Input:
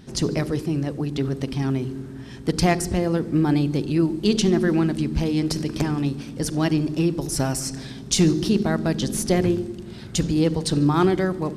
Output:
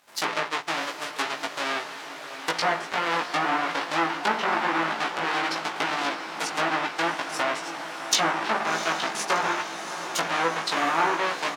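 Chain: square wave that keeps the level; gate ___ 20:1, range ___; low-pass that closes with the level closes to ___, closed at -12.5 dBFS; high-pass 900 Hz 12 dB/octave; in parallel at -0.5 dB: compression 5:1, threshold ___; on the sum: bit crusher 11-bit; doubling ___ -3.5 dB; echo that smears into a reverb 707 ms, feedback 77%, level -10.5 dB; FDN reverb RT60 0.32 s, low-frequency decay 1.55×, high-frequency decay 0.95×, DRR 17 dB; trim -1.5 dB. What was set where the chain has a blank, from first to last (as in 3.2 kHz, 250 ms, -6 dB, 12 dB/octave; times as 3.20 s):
-21 dBFS, -16 dB, 1.6 kHz, -36 dBFS, 18 ms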